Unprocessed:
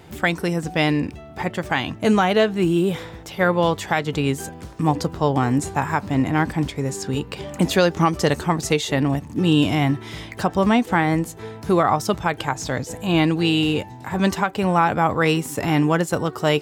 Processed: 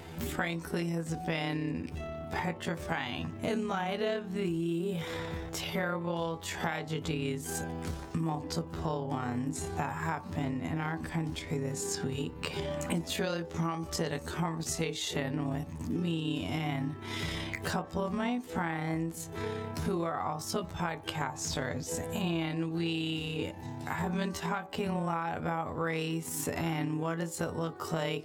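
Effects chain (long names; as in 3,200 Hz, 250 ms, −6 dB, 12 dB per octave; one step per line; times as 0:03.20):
time stretch by overlap-add 1.7×, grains 59 ms
downward compressor 6 to 1, threshold −32 dBFS, peak gain reduction 18 dB
hum removal 63.54 Hz, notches 19
level +1.5 dB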